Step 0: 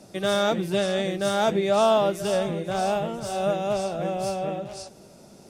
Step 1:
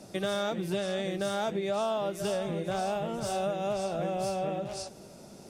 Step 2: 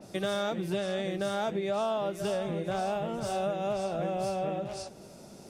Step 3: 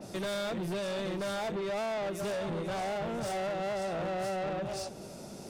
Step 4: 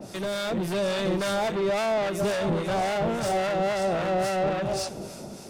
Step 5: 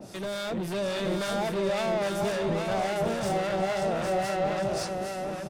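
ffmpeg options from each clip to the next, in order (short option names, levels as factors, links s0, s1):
-af "acompressor=threshold=0.0398:ratio=6"
-af "adynamicequalizer=threshold=0.00282:dfrequency=3800:dqfactor=0.7:tfrequency=3800:tqfactor=0.7:attack=5:release=100:ratio=0.375:range=2:mode=cutabove:tftype=highshelf"
-af "asoftclip=type=tanh:threshold=0.0158,volume=1.68"
-filter_complex "[0:a]dynaudnorm=f=160:g=7:m=1.68,acrossover=split=960[s0][s1];[s0]aeval=exprs='val(0)*(1-0.5/2+0.5/2*cos(2*PI*3.6*n/s))':c=same[s2];[s1]aeval=exprs='val(0)*(1-0.5/2-0.5/2*cos(2*PI*3.6*n/s))':c=same[s3];[s2][s3]amix=inputs=2:normalize=0,volume=2"
-af "aecho=1:1:808:0.596,volume=0.668"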